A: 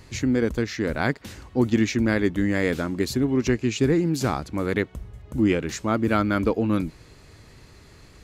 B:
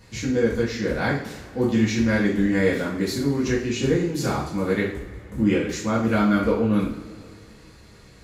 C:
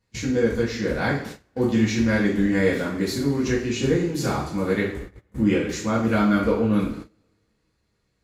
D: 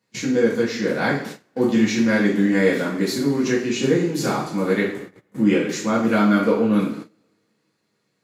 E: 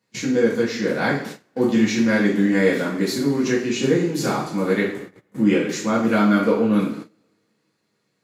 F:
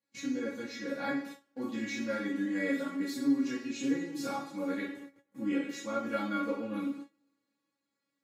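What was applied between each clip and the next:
two-slope reverb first 0.47 s, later 2.4 s, from -18 dB, DRR -6.5 dB; gain -6.5 dB
gate -34 dBFS, range -23 dB
HPF 150 Hz 24 dB/oct; gain +3 dB
nothing audible
resonator 280 Hz, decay 0.15 s, harmonics all, mix 100%; gain -2.5 dB

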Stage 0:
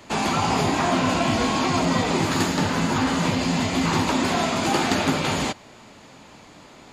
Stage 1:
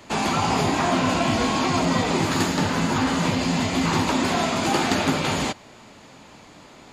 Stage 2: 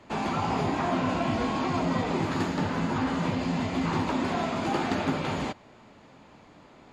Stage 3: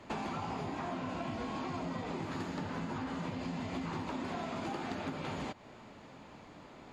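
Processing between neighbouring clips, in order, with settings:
nothing audible
LPF 1900 Hz 6 dB/oct; gain -5 dB
compressor 12:1, threshold -35 dBFS, peak gain reduction 14 dB

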